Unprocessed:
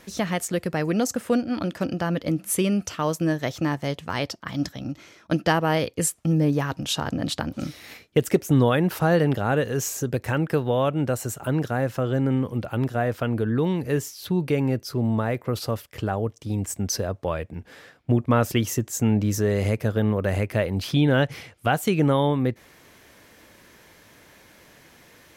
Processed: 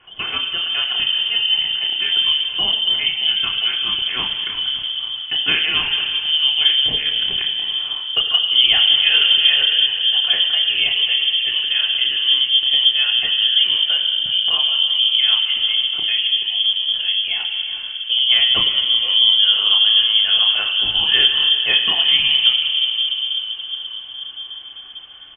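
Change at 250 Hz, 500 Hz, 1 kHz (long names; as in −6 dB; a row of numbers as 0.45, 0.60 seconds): below −20 dB, below −15 dB, −6.5 dB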